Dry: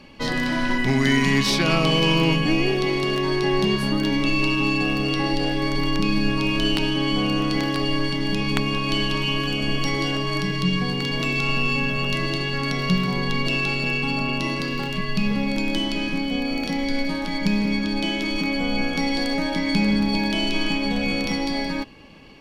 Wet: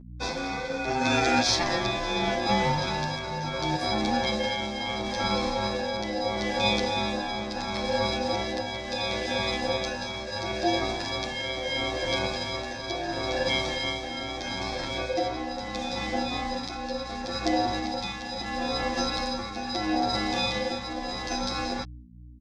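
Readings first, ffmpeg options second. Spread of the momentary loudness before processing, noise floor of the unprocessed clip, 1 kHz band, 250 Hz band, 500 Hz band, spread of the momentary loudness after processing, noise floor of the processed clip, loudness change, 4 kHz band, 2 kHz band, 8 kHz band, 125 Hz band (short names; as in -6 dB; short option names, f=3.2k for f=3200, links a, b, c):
6 LU, -27 dBFS, +0.5 dB, -10.0 dB, -2.5 dB, 8 LU, -36 dBFS, -6.0 dB, -4.5 dB, -7.0 dB, 0.0 dB, -11.0 dB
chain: -filter_complex "[0:a]aeval=exprs='sgn(val(0))*max(abs(val(0))-0.0168,0)':c=same,aeval=exprs='val(0)*sin(2*PI*520*n/s)':c=same,lowpass=f=5.8k:t=q:w=1.9,aeval=exprs='val(0)+0.01*(sin(2*PI*60*n/s)+sin(2*PI*2*60*n/s)/2+sin(2*PI*3*60*n/s)/3+sin(2*PI*4*60*n/s)/4+sin(2*PI*5*60*n/s)/5)':c=same,tremolo=f=0.74:d=0.51,asuperstop=centerf=2900:order=8:qfactor=6.9,asplit=2[a][b];[b]adelay=9.4,afreqshift=2.9[c];[a][c]amix=inputs=2:normalize=1,volume=2.5dB"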